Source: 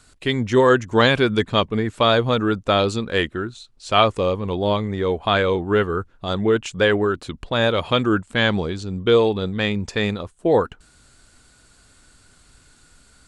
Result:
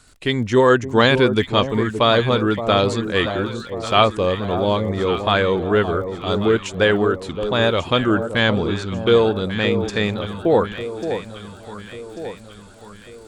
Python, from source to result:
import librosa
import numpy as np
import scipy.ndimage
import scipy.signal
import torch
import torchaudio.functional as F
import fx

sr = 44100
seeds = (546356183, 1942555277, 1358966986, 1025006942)

y = fx.dmg_crackle(x, sr, seeds[0], per_s=29.0, level_db=-39.0)
y = fx.echo_alternate(y, sr, ms=571, hz=960.0, feedback_pct=69, wet_db=-8.5)
y = F.gain(torch.from_numpy(y), 1.0).numpy()